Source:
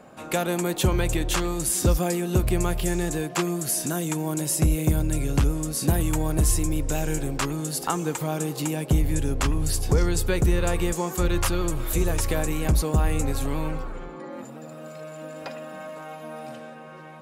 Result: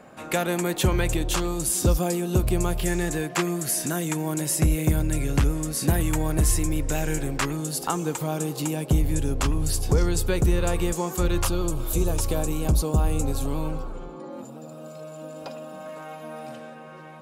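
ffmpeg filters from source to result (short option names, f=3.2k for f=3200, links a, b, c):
-af "asetnsamples=n=441:p=0,asendcmd='1.14 equalizer g -5;2.8 equalizer g 4.5;7.57 equalizer g -3.5;11.45 equalizer g -12.5;15.86 equalizer g -1',equalizer=f=1.9k:t=o:w=0.67:g=3.5"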